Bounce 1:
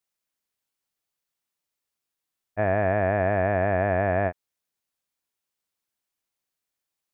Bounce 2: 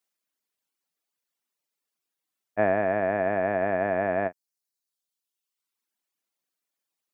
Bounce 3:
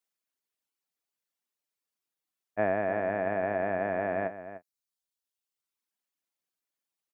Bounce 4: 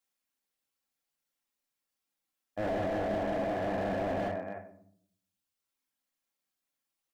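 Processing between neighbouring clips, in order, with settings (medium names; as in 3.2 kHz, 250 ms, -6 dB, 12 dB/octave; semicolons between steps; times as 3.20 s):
Chebyshev high-pass 210 Hz, order 2; reverb removal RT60 1.2 s; trim +3 dB
echo from a far wall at 51 m, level -12 dB; trim -4.5 dB
simulated room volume 950 m³, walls furnished, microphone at 2.2 m; slew-rate limiter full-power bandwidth 20 Hz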